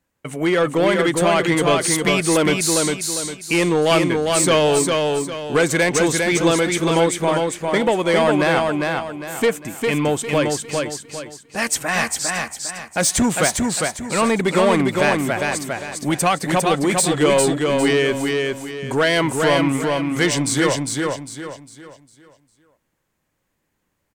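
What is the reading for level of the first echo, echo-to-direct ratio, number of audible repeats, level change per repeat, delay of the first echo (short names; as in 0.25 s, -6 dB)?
-3.5 dB, -3.0 dB, 4, -9.0 dB, 0.403 s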